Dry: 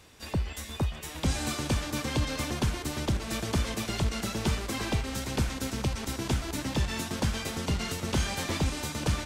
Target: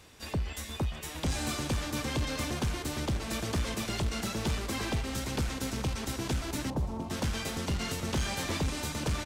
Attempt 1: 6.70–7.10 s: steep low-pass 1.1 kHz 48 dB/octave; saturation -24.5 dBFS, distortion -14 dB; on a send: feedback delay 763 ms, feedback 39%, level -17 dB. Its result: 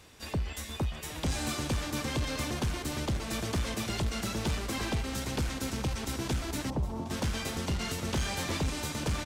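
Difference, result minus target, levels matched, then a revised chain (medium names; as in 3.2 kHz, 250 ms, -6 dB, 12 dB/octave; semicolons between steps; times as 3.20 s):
echo 394 ms early
6.70–7.10 s: steep low-pass 1.1 kHz 48 dB/octave; saturation -24.5 dBFS, distortion -14 dB; on a send: feedback delay 1157 ms, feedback 39%, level -17 dB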